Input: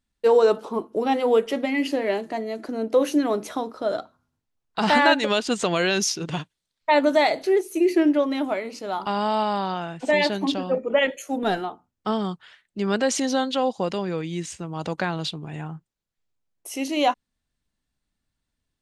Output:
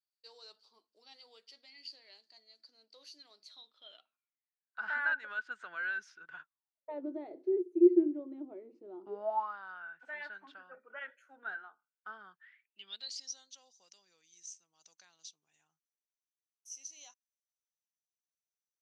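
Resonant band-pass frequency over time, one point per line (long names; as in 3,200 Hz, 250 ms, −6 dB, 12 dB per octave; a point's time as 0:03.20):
resonant band-pass, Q 18
0:03.41 4,600 Hz
0:04.79 1,500 Hz
0:06.41 1,500 Hz
0:07.04 350 Hz
0:09.07 350 Hz
0:09.56 1,500 Hz
0:12.29 1,500 Hz
0:13.34 6,000 Hz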